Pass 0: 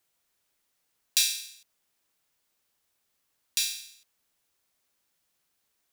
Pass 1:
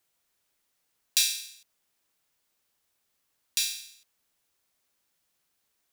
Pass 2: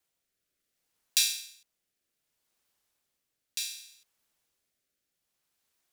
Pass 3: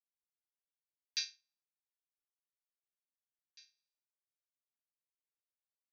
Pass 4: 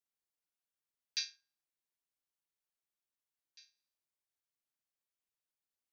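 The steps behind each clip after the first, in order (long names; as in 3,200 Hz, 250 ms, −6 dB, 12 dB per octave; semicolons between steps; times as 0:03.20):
no processing that can be heard
noise that follows the level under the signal 33 dB; rotating-speaker cabinet horn 0.65 Hz; level −1 dB
Chebyshev low-pass with heavy ripple 6,400 Hz, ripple 9 dB; expander for the loud parts 2.5 to 1, over −50 dBFS; level −3 dB
convolution reverb RT60 0.55 s, pre-delay 3 ms, DRR 16.5 dB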